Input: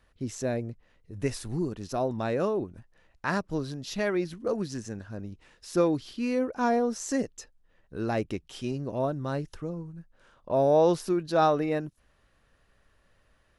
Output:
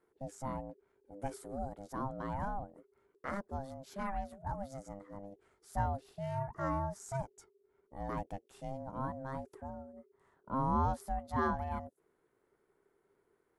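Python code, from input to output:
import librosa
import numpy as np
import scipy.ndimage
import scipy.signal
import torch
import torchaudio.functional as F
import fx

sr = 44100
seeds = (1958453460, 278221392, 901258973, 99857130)

y = x * np.sin(2.0 * np.pi * 400.0 * np.arange(len(x)) / sr)
y = fx.band_shelf(y, sr, hz=3700.0, db=-10.0, octaves=1.7)
y = y * 10.0 ** (-7.0 / 20.0)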